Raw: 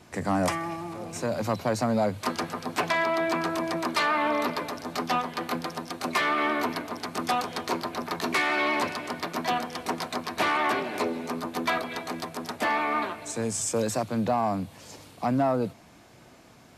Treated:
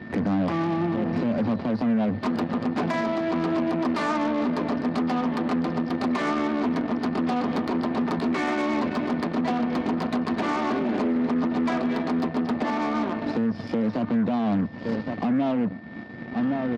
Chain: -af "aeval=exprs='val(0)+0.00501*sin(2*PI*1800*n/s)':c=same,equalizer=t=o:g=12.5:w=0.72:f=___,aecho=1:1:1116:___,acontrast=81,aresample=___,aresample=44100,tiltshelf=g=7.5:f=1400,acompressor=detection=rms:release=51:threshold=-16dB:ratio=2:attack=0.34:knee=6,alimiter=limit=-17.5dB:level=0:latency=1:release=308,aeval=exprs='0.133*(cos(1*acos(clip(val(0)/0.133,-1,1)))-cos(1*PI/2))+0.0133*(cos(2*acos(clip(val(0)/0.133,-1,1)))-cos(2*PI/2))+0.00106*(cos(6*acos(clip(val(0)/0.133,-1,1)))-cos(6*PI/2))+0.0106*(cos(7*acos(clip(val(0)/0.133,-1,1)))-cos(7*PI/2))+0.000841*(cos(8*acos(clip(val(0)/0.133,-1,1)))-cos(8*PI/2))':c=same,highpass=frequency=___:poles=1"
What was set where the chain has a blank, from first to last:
230, 0.119, 11025, 85